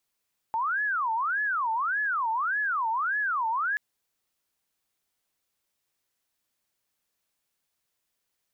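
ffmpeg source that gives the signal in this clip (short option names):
-f lavfi -i "aevalsrc='0.0596*sin(2*PI*(1297.5*t-412.5/(2*PI*1.7)*sin(2*PI*1.7*t)))':d=3.23:s=44100"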